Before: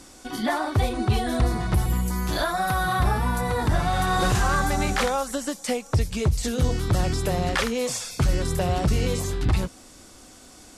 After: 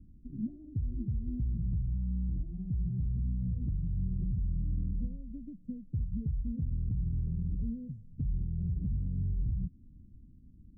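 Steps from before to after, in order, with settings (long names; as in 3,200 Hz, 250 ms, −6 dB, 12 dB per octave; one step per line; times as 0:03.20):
inverse Chebyshev low-pass filter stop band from 830 Hz, stop band 70 dB
downward compressor 2.5 to 1, threshold −28 dBFS, peak gain reduction 8.5 dB
brickwall limiter −28 dBFS, peak gain reduction 9 dB
level +2 dB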